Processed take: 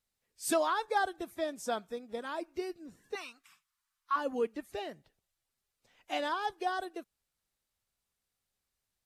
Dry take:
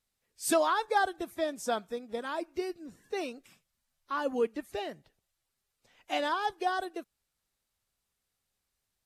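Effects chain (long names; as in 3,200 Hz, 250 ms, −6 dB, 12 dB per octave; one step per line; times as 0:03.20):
0:03.15–0:04.16: low shelf with overshoot 750 Hz −13.5 dB, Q 3
level −3 dB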